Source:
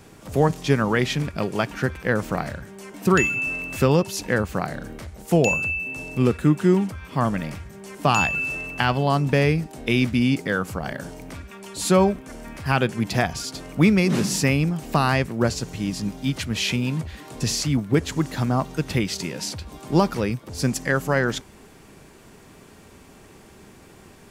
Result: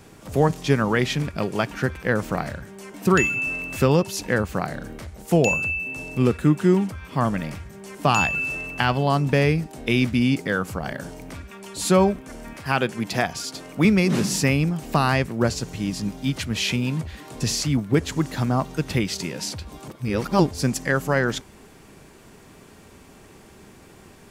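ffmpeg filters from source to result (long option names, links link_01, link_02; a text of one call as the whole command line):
ffmpeg -i in.wav -filter_complex "[0:a]asettb=1/sr,asplit=3[link_01][link_02][link_03];[link_01]atrim=end=12.534[link_04];[link_02]atrim=start=12.53:end=13.85,asetpts=PTS-STARTPTS,afade=type=in:duration=0.004:curve=qsin,afade=type=out:start_time=1.316:duration=0.004:curve=qsin,highpass=frequency=200:poles=1[link_05];[link_03]atrim=start=13.846[link_06];[link_04][link_05]acrossfade=duration=0.004:curve1=hsin:curve2=qsin[link_07];[link_07][link_06]acrossfade=duration=0.004:curve1=qsin:curve2=hsin,asplit=3[link_08][link_09][link_10];[link_08]atrim=end=19.882[link_11];[link_09]atrim=start=19.878:end=20.512,asetpts=PTS-STARTPTS,areverse[link_12];[link_10]atrim=start=20.508[link_13];[link_11][link_12]acrossfade=duration=0.004:curve1=hsin:curve2=hsin[link_14];[link_14][link_13]acrossfade=duration=0.004:curve1=hsin:curve2=hsin" out.wav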